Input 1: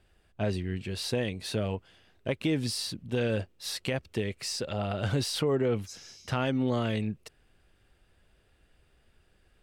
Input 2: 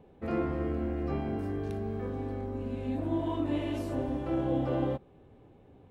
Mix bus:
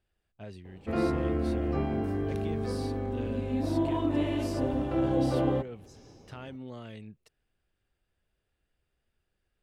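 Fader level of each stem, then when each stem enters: −14.5, +3.0 decibels; 0.00, 0.65 seconds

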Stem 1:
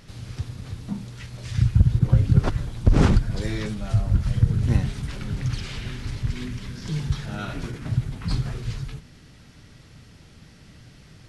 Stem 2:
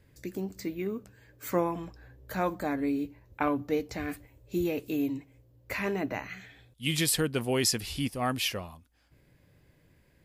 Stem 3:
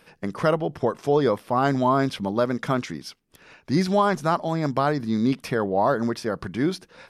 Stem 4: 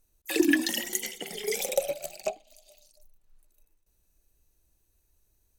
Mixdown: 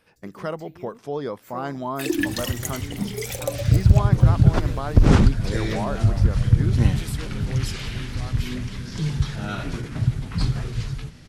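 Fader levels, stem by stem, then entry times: +2.5, −11.5, −8.5, −1.0 decibels; 2.10, 0.00, 0.00, 1.70 seconds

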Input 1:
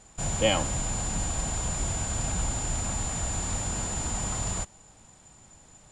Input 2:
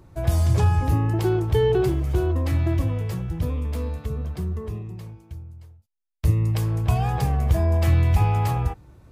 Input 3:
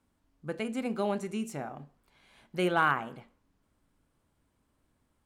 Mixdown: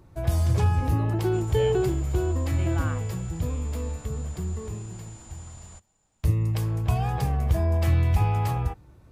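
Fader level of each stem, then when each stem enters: −16.5, −3.0, −11.0 decibels; 1.15, 0.00, 0.00 seconds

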